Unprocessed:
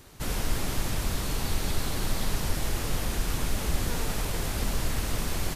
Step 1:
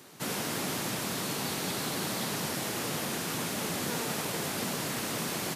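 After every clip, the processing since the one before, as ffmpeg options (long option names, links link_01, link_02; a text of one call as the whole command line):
ffmpeg -i in.wav -af "highpass=frequency=150:width=0.5412,highpass=frequency=150:width=1.3066,volume=1dB" out.wav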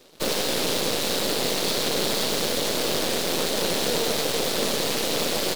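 ffmpeg -i in.wav -af "aeval=exprs='0.1*(cos(1*acos(clip(val(0)/0.1,-1,1)))-cos(1*PI/2))+0.0316*(cos(6*acos(clip(val(0)/0.1,-1,1)))-cos(6*PI/2))+0.0112*(cos(7*acos(clip(val(0)/0.1,-1,1)))-cos(7*PI/2))':channel_layout=same,equalizer=frequency=250:width_type=o:width=1:gain=3,equalizer=frequency=500:width_type=o:width=1:gain=11,equalizer=frequency=4000:width_type=o:width=1:gain=9,aeval=exprs='0.282*sin(PI/2*2*val(0)/0.282)':channel_layout=same,volume=-5.5dB" out.wav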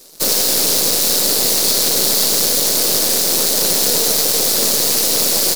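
ffmpeg -i in.wav -af "aexciter=amount=2.4:drive=9.4:freq=4500,volume=2.5dB" out.wav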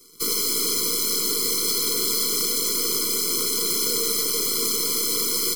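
ffmpeg -i in.wav -filter_complex "[0:a]acrossover=split=230|730|2300[link_01][link_02][link_03][link_04];[link_01]alimiter=level_in=7dB:limit=-24dB:level=0:latency=1,volume=-7dB[link_05];[link_05][link_02][link_03][link_04]amix=inputs=4:normalize=0,afftfilt=real='re*eq(mod(floor(b*sr/1024/490),2),0)':imag='im*eq(mod(floor(b*sr/1024/490),2),0)':win_size=1024:overlap=0.75,volume=-5dB" out.wav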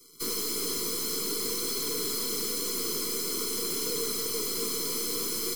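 ffmpeg -i in.wav -filter_complex "[0:a]acrossover=split=1100[link_01][link_02];[link_02]asoftclip=type=tanh:threshold=-24.5dB[link_03];[link_01][link_03]amix=inputs=2:normalize=0,flanger=delay=6.5:depth=5.5:regen=-42:speed=0.51:shape=triangular" out.wav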